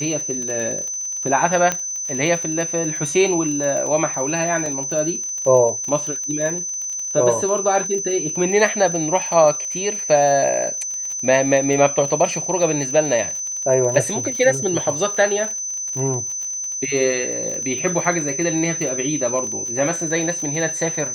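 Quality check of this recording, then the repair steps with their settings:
crackle 39/s -26 dBFS
tone 6100 Hz -24 dBFS
1.72 pop -6 dBFS
4.66 gap 2.4 ms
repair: de-click; notch 6100 Hz, Q 30; interpolate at 4.66, 2.4 ms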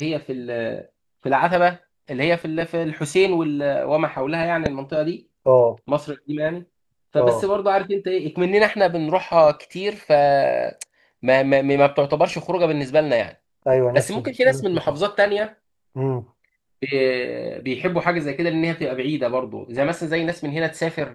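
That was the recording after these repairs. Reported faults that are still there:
none

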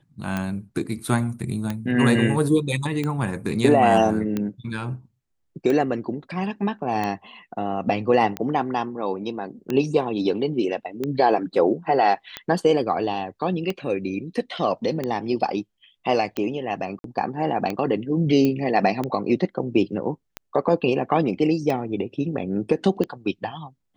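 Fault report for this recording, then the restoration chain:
tick 45 rpm -13 dBFS
16.99–17.04 gap 52 ms
18.45 pop -11 dBFS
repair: de-click; interpolate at 16.99, 52 ms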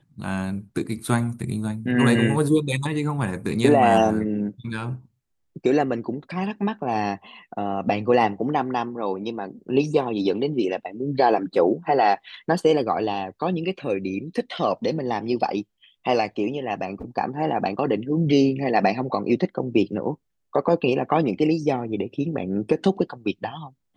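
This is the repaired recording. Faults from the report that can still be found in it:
none

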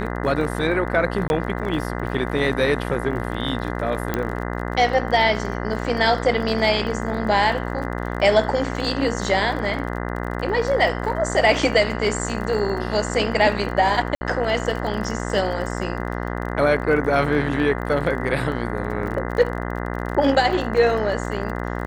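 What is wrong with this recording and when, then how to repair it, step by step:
buzz 60 Hz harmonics 34 -27 dBFS
crackle 33/s -30 dBFS
1.28–1.3 gap 21 ms
4.14 pop -9 dBFS
14.15–14.21 gap 60 ms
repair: de-click; de-hum 60 Hz, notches 34; interpolate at 1.28, 21 ms; interpolate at 14.15, 60 ms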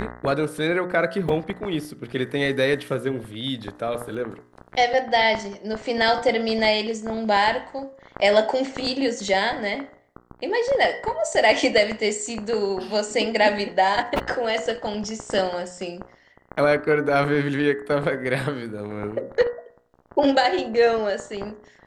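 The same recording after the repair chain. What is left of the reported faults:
4.14 pop

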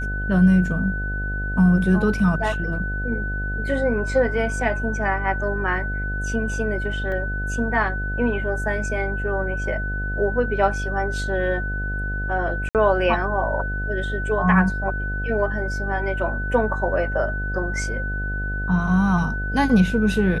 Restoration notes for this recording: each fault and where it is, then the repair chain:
buzz 50 Hz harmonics 15 -27 dBFS
tone 1500 Hz -28 dBFS
7.12 gap 2.5 ms
12.69–12.75 gap 58 ms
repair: notch 1500 Hz, Q 30; de-hum 50 Hz, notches 15; interpolate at 7.12, 2.5 ms; interpolate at 12.69, 58 ms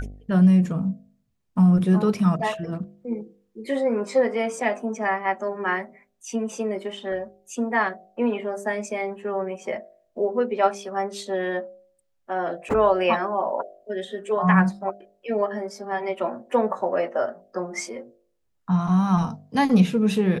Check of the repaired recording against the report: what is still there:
none

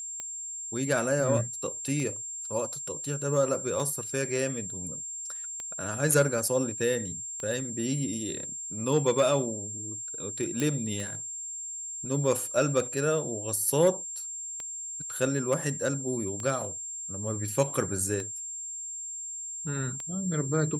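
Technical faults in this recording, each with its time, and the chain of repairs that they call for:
tick 33 1/3 rpm -22 dBFS
tone 7400 Hz -35 dBFS
10.6 pop -15 dBFS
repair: de-click; notch 7400 Hz, Q 30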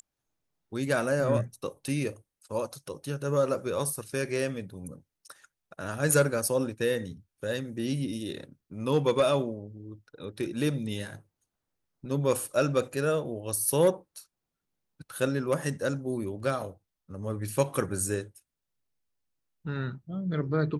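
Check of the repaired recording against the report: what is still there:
none

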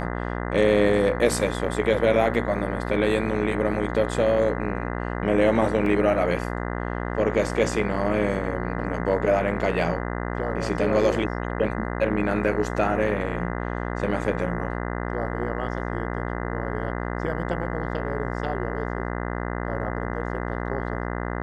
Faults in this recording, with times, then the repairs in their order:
buzz 60 Hz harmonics 34 -29 dBFS
5.86 gap 2.5 ms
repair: de-hum 60 Hz, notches 34; interpolate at 5.86, 2.5 ms

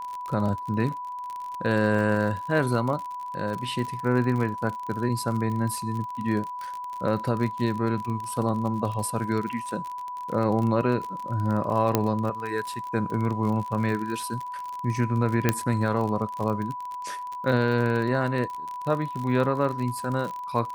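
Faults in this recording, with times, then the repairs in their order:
crackle 43/s -30 dBFS
tone 990 Hz -32 dBFS
11.95 pop -6 dBFS
15.49 pop -6 dBFS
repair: de-click; notch 990 Hz, Q 30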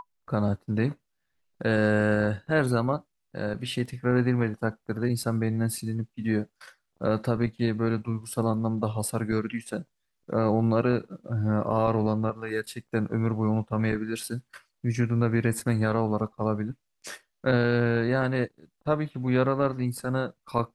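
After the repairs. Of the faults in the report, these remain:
none

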